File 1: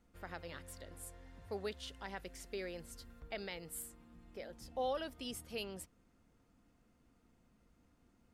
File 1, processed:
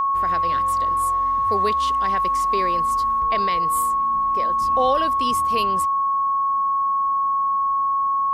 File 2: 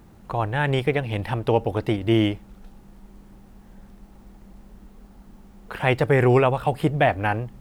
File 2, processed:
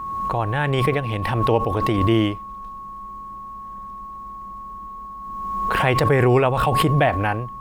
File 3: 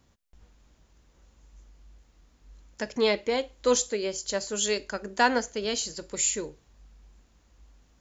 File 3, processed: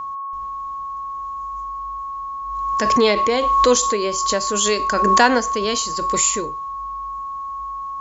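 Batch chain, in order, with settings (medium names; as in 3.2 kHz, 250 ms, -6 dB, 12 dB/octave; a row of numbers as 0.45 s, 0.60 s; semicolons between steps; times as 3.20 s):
whistle 1.1 kHz -33 dBFS; swell ahead of each attack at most 27 dB/s; normalise loudness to -20 LUFS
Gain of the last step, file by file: +15.5 dB, +0.5 dB, +7.0 dB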